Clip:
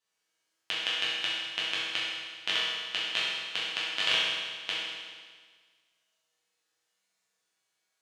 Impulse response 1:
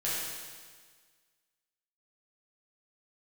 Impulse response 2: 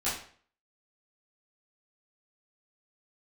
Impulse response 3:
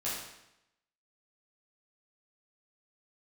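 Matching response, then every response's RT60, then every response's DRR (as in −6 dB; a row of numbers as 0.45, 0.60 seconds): 1; 1.6, 0.50, 0.85 seconds; −9.5, −12.5, −9.0 decibels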